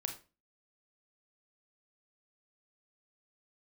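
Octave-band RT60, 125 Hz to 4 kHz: 0.40, 0.40, 0.35, 0.30, 0.30, 0.25 seconds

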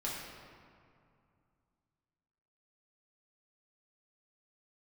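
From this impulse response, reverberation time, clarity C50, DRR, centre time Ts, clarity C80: 2.4 s, 0.0 dB, −6.5 dB, 99 ms, 2.0 dB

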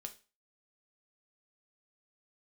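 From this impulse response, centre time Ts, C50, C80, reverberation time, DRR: 7 ms, 15.0 dB, 21.0 dB, 0.35 s, 5.5 dB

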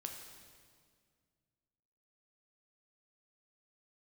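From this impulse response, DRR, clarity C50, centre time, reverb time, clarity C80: 2.5 dB, 5.0 dB, 49 ms, 2.0 s, 6.5 dB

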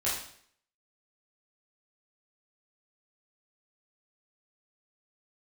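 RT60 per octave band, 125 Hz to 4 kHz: 0.60, 0.60, 0.60, 0.60, 0.60, 0.60 seconds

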